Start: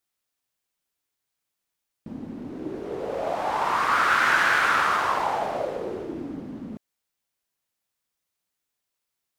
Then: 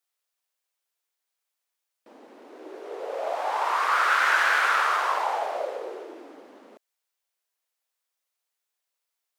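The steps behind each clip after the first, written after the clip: high-pass 440 Hz 24 dB/octave; trim -1 dB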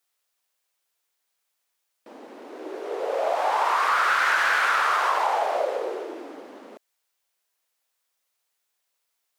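saturation -12.5 dBFS, distortion -23 dB; compression 4:1, threshold -25 dBFS, peak gain reduction 6 dB; trim +6 dB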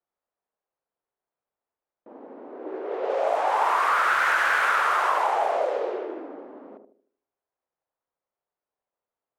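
band-passed feedback delay 76 ms, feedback 43%, band-pass 350 Hz, level -5 dB; level-controlled noise filter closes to 870 Hz, open at -18 dBFS; dynamic bell 4.6 kHz, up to -6 dB, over -43 dBFS, Q 1.1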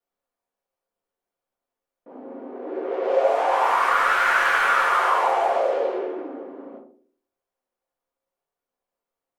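simulated room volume 120 m³, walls furnished, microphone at 1.8 m; trim -1.5 dB

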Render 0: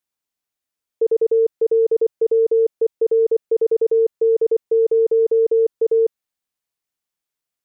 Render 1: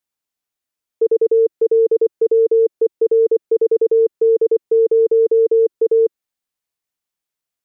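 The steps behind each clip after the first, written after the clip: dynamic bell 350 Hz, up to +6 dB, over -31 dBFS, Q 2.2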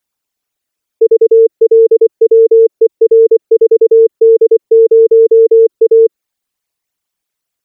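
resonances exaggerated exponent 2; trim +7.5 dB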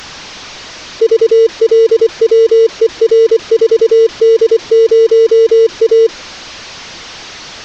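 one-bit delta coder 32 kbps, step -21.5 dBFS; trim -1 dB

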